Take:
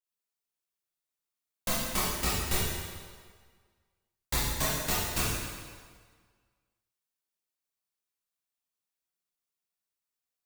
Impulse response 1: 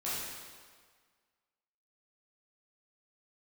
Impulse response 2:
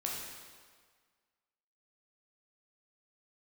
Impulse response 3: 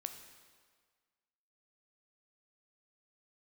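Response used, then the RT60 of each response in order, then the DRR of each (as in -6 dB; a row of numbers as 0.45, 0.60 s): 1; 1.7, 1.7, 1.7 s; -10.5, -3.0, 6.5 dB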